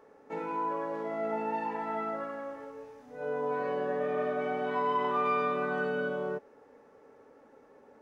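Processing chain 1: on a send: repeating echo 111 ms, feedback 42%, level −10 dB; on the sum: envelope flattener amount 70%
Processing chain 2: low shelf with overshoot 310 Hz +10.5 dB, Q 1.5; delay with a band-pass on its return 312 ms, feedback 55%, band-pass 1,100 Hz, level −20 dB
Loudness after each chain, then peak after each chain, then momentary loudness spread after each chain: −29.0, −31.0 LKFS; −17.5, −16.5 dBFS; 9, 12 LU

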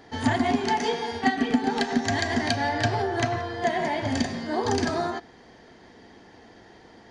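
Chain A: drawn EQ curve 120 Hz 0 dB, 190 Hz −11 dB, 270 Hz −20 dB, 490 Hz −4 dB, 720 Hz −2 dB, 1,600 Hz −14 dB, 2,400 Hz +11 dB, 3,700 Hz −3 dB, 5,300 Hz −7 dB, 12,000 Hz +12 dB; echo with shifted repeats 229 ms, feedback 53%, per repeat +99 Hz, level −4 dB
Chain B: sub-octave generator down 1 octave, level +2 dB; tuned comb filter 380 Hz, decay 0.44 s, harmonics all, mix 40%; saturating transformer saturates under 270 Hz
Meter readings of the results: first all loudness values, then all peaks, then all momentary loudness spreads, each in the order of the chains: −27.5, −30.0 LKFS; −10.0, −12.0 dBFS; 9, 4 LU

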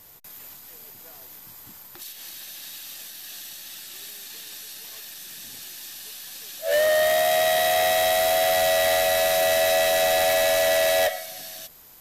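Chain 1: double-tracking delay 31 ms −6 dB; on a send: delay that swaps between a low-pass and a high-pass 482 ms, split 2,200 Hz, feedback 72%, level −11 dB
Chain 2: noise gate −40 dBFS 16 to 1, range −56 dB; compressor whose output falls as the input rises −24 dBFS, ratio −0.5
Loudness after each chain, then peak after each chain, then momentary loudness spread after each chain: −18.5, −28.0 LKFS; −10.0, −12.5 dBFS; 19, 8 LU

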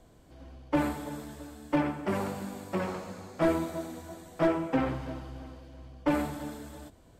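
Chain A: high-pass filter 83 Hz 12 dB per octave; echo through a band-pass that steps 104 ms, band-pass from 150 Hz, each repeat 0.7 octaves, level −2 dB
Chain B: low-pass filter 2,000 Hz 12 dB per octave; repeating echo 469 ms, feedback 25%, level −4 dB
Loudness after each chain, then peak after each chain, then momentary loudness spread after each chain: −31.5, −31.5 LKFS; −14.0, −16.0 dBFS; 15, 10 LU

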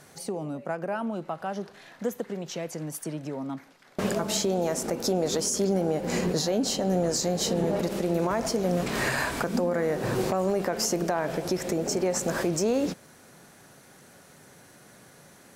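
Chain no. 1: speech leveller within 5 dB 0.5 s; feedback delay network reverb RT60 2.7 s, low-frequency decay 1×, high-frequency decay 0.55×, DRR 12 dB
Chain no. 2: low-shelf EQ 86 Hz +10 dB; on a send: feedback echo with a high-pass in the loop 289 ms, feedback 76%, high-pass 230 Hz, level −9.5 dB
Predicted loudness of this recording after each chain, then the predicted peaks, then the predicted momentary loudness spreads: −28.0, −27.0 LKFS; −13.0, −13.5 dBFS; 3, 12 LU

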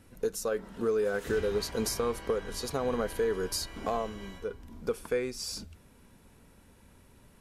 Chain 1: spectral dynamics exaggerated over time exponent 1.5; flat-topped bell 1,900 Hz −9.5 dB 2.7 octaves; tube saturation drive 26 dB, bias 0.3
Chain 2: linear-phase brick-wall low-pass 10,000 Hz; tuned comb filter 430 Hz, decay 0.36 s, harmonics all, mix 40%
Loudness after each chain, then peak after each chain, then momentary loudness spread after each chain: −37.5, −36.5 LKFS; −25.0, −22.5 dBFS; 11, 10 LU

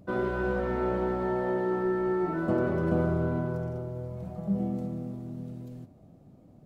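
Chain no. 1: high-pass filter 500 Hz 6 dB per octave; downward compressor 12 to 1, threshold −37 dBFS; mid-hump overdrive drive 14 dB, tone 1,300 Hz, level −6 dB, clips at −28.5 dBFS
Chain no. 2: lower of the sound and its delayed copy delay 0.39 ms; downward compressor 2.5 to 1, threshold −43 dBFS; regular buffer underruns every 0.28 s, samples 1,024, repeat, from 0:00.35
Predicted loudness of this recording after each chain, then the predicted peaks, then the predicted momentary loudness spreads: −40.0, −41.5 LKFS; −29.5, −28.5 dBFS; 8, 8 LU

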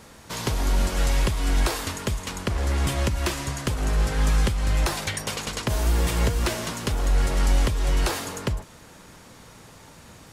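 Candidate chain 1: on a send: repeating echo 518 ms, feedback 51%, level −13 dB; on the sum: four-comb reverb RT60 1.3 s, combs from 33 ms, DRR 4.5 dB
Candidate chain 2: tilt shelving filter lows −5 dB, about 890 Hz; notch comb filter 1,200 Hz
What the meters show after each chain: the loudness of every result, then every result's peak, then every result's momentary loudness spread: −25.5, −28.0 LKFS; −11.5, −9.0 dBFS; 15, 20 LU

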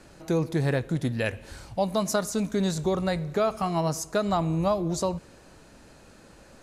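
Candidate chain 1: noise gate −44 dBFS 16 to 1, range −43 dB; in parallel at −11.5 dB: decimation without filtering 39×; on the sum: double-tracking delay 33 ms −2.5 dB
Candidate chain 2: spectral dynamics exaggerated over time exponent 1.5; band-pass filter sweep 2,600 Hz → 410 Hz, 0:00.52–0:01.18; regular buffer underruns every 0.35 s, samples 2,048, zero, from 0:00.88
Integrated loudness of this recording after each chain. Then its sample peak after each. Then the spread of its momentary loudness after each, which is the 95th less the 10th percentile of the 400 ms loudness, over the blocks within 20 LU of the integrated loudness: −24.5, −38.0 LKFS; −10.5, −19.5 dBFS; 5, 11 LU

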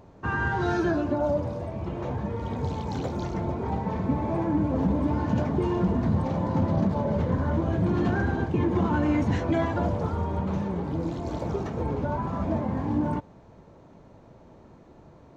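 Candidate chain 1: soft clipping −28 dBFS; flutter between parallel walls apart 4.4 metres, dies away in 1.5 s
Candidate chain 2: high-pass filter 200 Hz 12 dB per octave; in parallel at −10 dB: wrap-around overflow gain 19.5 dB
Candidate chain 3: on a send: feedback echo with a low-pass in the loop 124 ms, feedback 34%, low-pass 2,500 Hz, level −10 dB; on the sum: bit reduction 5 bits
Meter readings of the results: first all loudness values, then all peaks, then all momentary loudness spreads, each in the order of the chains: −25.0, −27.5, −26.0 LKFS; −11.5, −15.5, −14.0 dBFS; 6, 7, 5 LU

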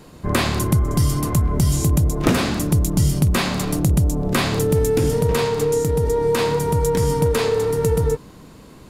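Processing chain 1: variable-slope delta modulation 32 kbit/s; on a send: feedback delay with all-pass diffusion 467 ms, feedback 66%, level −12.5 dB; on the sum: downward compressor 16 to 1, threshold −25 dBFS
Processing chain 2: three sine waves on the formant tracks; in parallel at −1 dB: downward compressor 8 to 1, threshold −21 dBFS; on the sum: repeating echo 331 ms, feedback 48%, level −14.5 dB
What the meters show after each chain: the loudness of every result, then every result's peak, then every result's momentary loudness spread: −30.0, −16.0 LKFS; −17.5, −1.0 dBFS; 2, 11 LU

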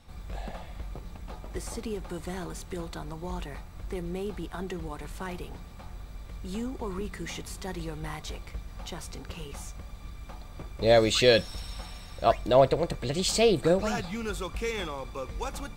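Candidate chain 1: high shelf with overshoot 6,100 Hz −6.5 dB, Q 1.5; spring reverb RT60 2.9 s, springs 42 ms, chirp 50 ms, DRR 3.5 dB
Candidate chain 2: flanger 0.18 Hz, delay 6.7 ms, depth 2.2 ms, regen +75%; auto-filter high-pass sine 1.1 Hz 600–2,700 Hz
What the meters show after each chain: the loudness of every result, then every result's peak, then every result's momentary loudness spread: −28.0, −31.5 LKFS; −6.0, −7.0 dBFS; 19, 23 LU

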